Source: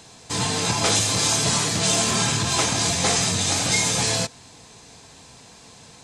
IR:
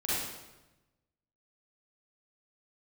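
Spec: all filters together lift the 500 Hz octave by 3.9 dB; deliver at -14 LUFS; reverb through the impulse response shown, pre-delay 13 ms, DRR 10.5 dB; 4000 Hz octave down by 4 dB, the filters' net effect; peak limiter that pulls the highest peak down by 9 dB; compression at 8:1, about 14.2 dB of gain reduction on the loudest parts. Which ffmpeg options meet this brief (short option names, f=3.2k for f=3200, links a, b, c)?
-filter_complex "[0:a]equalizer=f=500:t=o:g=5,equalizer=f=4k:t=o:g=-5,acompressor=threshold=-32dB:ratio=8,alimiter=level_in=5.5dB:limit=-24dB:level=0:latency=1,volume=-5.5dB,asplit=2[a][b];[1:a]atrim=start_sample=2205,adelay=13[c];[b][c]afir=irnorm=-1:irlink=0,volume=-18dB[d];[a][d]amix=inputs=2:normalize=0,volume=24.5dB"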